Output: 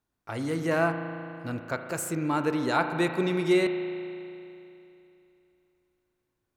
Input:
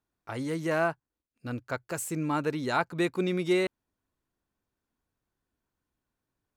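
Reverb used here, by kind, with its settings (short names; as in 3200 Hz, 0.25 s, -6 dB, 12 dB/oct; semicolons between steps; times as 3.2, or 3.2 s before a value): spring tank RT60 2.9 s, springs 36 ms, chirp 45 ms, DRR 6.5 dB; gain +1.5 dB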